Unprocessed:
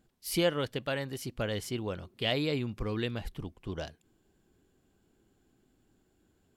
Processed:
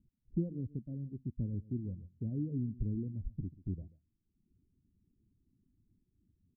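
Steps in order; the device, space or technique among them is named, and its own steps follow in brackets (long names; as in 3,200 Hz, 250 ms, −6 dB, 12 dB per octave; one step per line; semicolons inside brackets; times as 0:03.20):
the neighbour's flat through the wall (low-pass filter 250 Hz 24 dB per octave; parametric band 88 Hz +4.5 dB 0.74 octaves)
reverb reduction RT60 0.97 s
dynamic equaliser 300 Hz, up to +4 dB, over −48 dBFS, Q 1
single-tap delay 137 ms −18.5 dB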